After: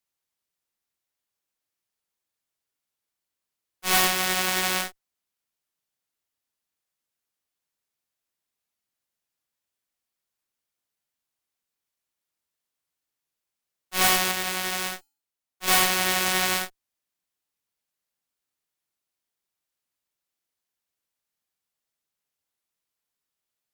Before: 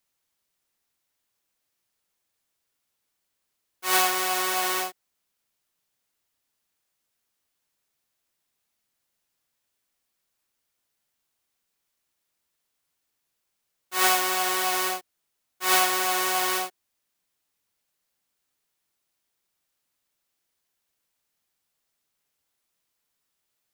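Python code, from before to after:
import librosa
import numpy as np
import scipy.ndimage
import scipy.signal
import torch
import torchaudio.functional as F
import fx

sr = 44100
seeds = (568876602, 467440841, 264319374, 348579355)

y = fx.cheby_harmonics(x, sr, harmonics=(7, 8), levels_db=(-22, -12), full_scale_db=-4.5)
y = fx.comb_fb(y, sr, f0_hz=280.0, decay_s=0.48, harmonics='odd', damping=0.0, mix_pct=40, at=(14.31, 15.68))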